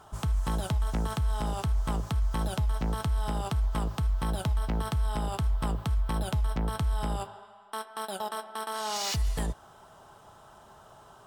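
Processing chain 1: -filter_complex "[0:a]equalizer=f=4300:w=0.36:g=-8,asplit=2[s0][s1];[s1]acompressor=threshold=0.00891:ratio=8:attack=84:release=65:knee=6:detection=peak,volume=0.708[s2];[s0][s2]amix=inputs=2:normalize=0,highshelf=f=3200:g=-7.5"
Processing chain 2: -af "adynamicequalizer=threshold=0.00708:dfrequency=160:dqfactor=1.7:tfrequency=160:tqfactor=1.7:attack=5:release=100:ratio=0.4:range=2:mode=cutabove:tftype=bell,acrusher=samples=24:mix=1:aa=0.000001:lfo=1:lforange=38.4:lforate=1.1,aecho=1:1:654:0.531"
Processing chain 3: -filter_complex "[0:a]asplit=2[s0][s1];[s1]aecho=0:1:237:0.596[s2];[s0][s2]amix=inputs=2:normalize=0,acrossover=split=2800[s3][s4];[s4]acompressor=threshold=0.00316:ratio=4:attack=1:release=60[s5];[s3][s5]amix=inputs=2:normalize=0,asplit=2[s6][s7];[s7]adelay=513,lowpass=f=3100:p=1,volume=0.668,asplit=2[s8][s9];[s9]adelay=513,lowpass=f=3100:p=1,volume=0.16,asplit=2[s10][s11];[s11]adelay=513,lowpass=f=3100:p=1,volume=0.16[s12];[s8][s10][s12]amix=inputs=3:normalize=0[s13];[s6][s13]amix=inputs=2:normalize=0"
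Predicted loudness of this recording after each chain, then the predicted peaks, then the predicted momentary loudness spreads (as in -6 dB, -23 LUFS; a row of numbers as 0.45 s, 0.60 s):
-30.0 LUFS, -31.0 LUFS, -29.5 LUFS; -18.5 dBFS, -17.5 dBFS, -15.5 dBFS; 7 LU, 6 LU, 7 LU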